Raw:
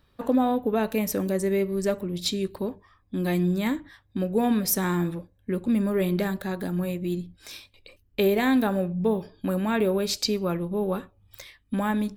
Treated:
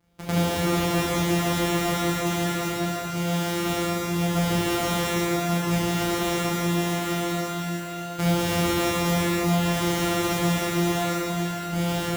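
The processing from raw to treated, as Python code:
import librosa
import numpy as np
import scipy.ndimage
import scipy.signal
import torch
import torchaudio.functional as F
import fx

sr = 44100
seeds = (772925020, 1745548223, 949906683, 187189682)

y = np.r_[np.sort(x[:len(x) // 256 * 256].reshape(-1, 256), axis=1).ravel(), x[len(x) // 256 * 256:]]
y = fx.highpass(y, sr, hz=89.0, slope=6)
y = fx.rev_shimmer(y, sr, seeds[0], rt60_s=4.0, semitones=12, shimmer_db=-8, drr_db=-8.5)
y = y * 10.0 ** (-6.0 / 20.0)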